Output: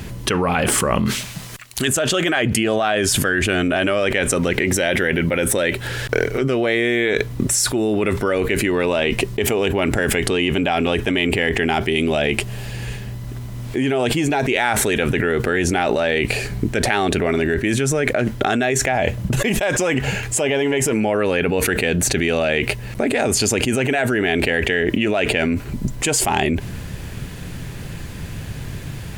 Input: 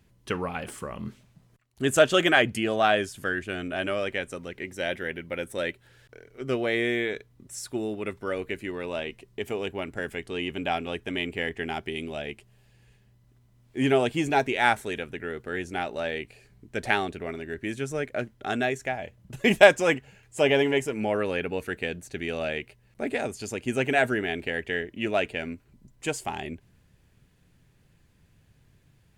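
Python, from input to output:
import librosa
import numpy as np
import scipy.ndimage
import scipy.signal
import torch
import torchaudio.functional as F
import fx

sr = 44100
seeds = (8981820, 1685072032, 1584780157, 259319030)

y = fx.tilt_shelf(x, sr, db=-8.0, hz=1100.0, at=(1.06, 1.88))
y = fx.env_flatten(y, sr, amount_pct=100)
y = y * librosa.db_to_amplitude(-9.0)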